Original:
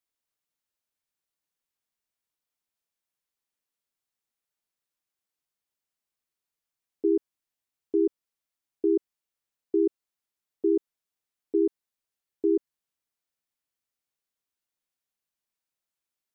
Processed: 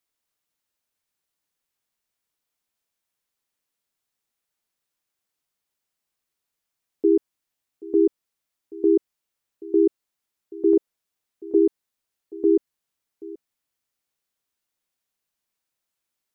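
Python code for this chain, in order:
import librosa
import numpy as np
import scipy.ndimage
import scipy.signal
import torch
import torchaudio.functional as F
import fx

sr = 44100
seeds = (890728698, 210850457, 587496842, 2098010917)

y = fx.dynamic_eq(x, sr, hz=530.0, q=1.6, threshold_db=-40.0, ratio=4.0, max_db=3, at=(10.73, 11.59))
y = y + 10.0 ** (-19.5 / 20.0) * np.pad(y, (int(780 * sr / 1000.0), 0))[:len(y)]
y = y * librosa.db_to_amplitude(5.5)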